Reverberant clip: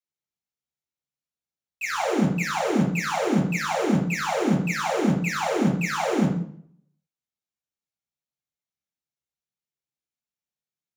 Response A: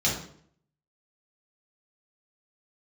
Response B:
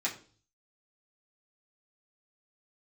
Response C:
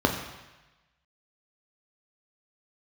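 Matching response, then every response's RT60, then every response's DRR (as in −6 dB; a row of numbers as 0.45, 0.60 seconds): A; 0.60, 0.40, 1.1 seconds; −5.0, −6.5, 2.0 decibels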